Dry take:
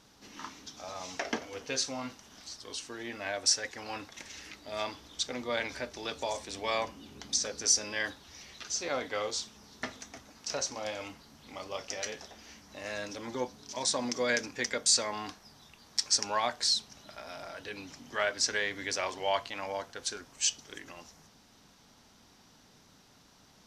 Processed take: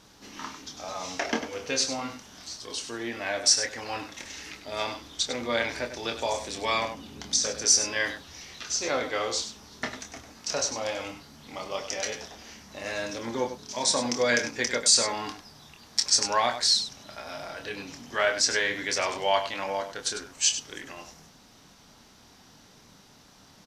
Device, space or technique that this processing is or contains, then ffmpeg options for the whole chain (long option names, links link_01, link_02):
slapback doubling: -filter_complex "[0:a]asplit=3[link_01][link_02][link_03];[link_02]adelay=26,volume=-7dB[link_04];[link_03]adelay=99,volume=-10dB[link_05];[link_01][link_04][link_05]amix=inputs=3:normalize=0,volume=4.5dB"